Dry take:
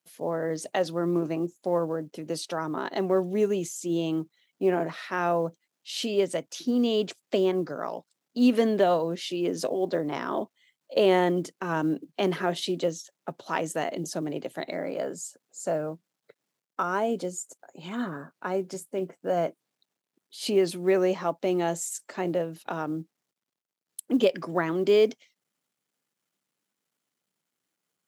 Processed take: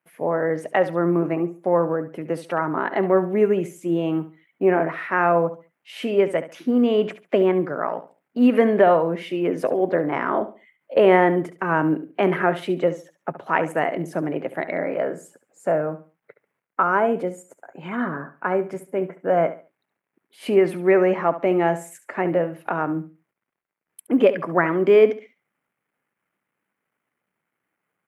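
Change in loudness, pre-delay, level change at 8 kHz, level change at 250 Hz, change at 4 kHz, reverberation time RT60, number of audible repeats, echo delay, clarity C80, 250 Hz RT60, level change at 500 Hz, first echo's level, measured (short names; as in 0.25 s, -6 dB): +6.5 dB, none, n/a, +5.5 dB, -4.0 dB, none, 2, 70 ms, none, none, +6.5 dB, -13.5 dB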